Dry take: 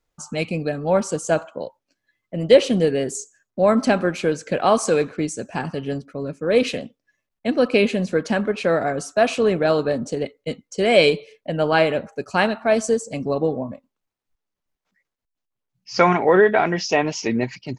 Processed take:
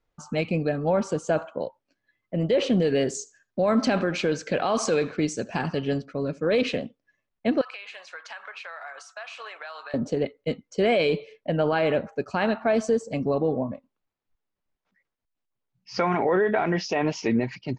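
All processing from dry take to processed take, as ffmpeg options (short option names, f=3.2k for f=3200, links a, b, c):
-filter_complex "[0:a]asettb=1/sr,asplit=3[a][b][c];[a]atrim=end=2.824[d];[b]atrim=start=2.82:end=6.62,asetpts=PTS-STARTPTS,afade=t=in:d=0.004:c=qsin,afade=t=out:st=3.796:d=0.004:c=qsin,equalizer=f=5.3k:w=0.55:g=8,aecho=1:1:76:0.0708,atrim=end_sample=167580[e];[c]atrim=start=6.616[f];[d][e]acrossfade=d=0.004:c1=hsin:c2=qsin[g];[g][f]acrossfade=d=0.004:c1=qsin:c2=hsin,asettb=1/sr,asplit=3[h][i][j];[h]atrim=end=7.614[k];[i]atrim=start=7.61:end=9.94,asetpts=PTS-STARTPTS,afade=t=in:d=0.004:c=qsin,afade=t=out:st=2.326:d=0.004:c=qsin,highpass=f=950:w=0.5412,highpass=f=950:w=1.3066,acompressor=threshold=-33dB:ratio=12:attack=3.2:release=140:knee=1:detection=peak[l];[j]atrim=start=9.936[m];[k][l]acrossfade=d=0.004:c1=hsin:c2=qsin[n];[n][m]acrossfade=d=0.004:c1=qsin:c2=hsin,lowpass=6.7k,aemphasis=mode=reproduction:type=50kf,alimiter=limit=-14dB:level=0:latency=1:release=37"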